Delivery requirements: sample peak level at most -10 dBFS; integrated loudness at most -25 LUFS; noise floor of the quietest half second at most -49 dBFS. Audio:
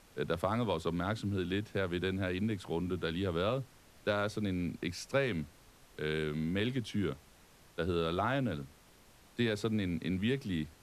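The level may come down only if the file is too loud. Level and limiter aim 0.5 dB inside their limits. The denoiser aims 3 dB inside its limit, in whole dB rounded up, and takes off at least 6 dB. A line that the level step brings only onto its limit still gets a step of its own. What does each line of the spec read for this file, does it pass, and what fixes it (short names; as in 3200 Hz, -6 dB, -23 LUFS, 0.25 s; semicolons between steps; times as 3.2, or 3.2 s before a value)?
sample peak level -16.5 dBFS: OK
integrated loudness -35.0 LUFS: OK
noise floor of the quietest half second -61 dBFS: OK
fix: none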